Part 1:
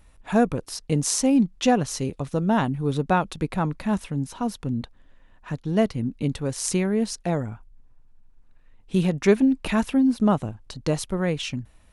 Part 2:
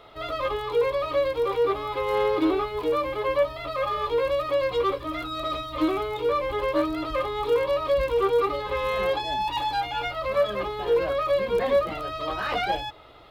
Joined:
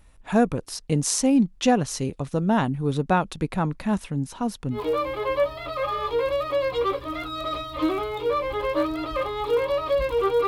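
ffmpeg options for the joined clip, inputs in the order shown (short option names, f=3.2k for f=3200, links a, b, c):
-filter_complex "[0:a]apad=whole_dur=10.47,atrim=end=10.47,atrim=end=4.8,asetpts=PTS-STARTPTS[a];[1:a]atrim=start=2.69:end=8.46,asetpts=PTS-STARTPTS[b];[a][b]acrossfade=d=0.1:c1=tri:c2=tri"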